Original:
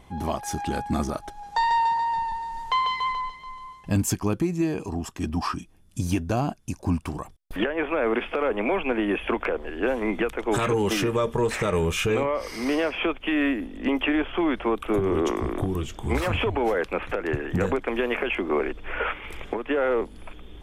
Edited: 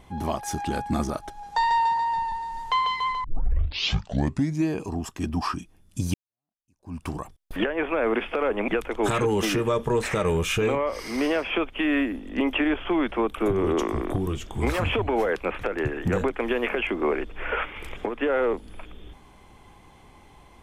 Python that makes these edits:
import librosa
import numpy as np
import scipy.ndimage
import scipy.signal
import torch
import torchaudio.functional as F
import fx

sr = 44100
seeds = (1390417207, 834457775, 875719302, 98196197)

y = fx.edit(x, sr, fx.tape_start(start_s=3.24, length_s=1.43),
    fx.fade_in_span(start_s=6.14, length_s=0.89, curve='exp'),
    fx.cut(start_s=8.68, length_s=1.48), tone=tone)